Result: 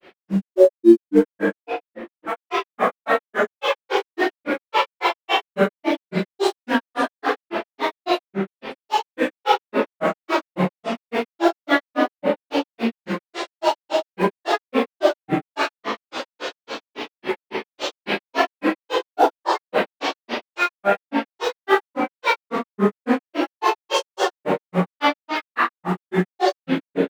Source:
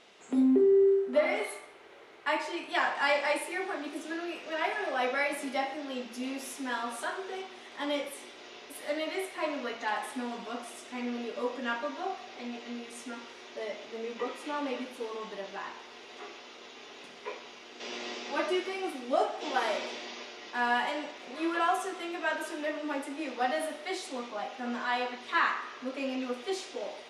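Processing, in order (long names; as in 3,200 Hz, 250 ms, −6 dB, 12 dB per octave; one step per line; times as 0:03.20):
low-pass filter 4,300 Hz 12 dB per octave
in parallel at −3.5 dB: floating-point word with a short mantissa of 2 bits
on the sum: speech leveller within 5 dB 0.5 s
convolution reverb RT60 2.1 s, pre-delay 4 ms, DRR −15.5 dB
granular cloud 140 ms, grains 3.6 per second, spray 16 ms, pitch spread up and down by 7 semitones
level −3.5 dB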